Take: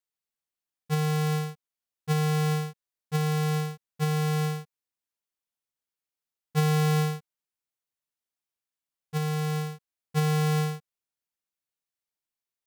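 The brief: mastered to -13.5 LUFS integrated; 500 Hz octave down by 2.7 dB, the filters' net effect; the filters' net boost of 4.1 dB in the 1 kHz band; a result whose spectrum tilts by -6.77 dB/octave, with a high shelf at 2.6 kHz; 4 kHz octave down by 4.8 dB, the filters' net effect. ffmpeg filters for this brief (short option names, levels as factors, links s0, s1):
-af "equalizer=f=500:t=o:g=-4,equalizer=f=1000:t=o:g=8,highshelf=f=2600:g=-4.5,equalizer=f=4000:t=o:g=-3,volume=5.31"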